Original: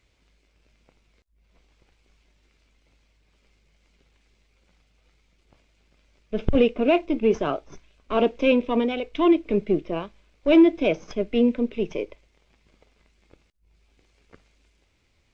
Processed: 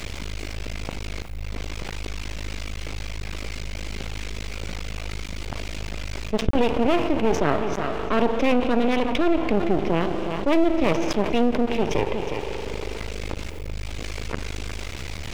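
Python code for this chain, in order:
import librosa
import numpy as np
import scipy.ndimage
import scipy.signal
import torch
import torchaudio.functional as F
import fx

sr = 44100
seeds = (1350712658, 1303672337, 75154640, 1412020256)

y = fx.peak_eq(x, sr, hz=70.0, db=7.0, octaves=0.33)
y = y + 10.0 ** (-18.0 / 20.0) * np.pad(y, (int(362 * sr / 1000.0), 0))[:len(y)]
y = fx.rev_spring(y, sr, rt60_s=2.7, pass_ms=(40,), chirp_ms=40, drr_db=16.0)
y = np.maximum(y, 0.0)
y = fx.bass_treble(y, sr, bass_db=0, treble_db=-4, at=(7.4, 9.58))
y = fx.env_flatten(y, sr, amount_pct=70)
y = y * 10.0 ** (-2.0 / 20.0)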